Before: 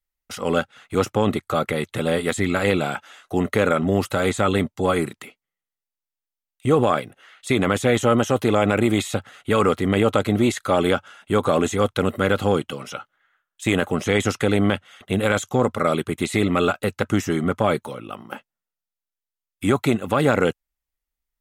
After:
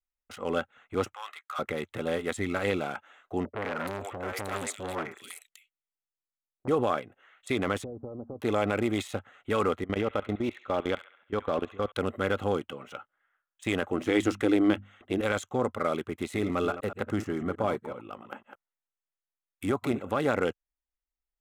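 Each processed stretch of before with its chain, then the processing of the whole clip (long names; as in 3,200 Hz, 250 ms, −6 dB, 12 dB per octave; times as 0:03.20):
0:01.14–0:01.59: high-pass filter 1,100 Hz 24 dB per octave + double-tracking delay 13 ms −10 dB
0:03.45–0:06.68: high-shelf EQ 5,000 Hz +9.5 dB + three-band delay without the direct sound lows, mids, highs 90/340 ms, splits 580/2,700 Hz + saturating transformer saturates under 1,400 Hz
0:07.84–0:08.40: downward compressor 12 to 1, threshold −22 dBFS + Gaussian smoothing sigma 12 samples + hum removal 77.48 Hz, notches 3
0:09.84–0:11.92: low-pass filter 4,500 Hz 24 dB per octave + output level in coarse steps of 19 dB + delay with a high-pass on its return 68 ms, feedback 50%, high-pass 1,700 Hz, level −8.5 dB
0:13.92–0:15.21: parametric band 320 Hz +14 dB 0.26 octaves + mains-hum notches 50/100/150/200/250 Hz
0:16.18–0:20.16: delay that plays each chunk backwards 125 ms, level −11 dB + parametric band 2,800 Hz −3.5 dB 1.8 octaves + one half of a high-frequency compander encoder only
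whole clip: adaptive Wiener filter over 9 samples; parametric band 150 Hz −6.5 dB 0.88 octaves; level −7.5 dB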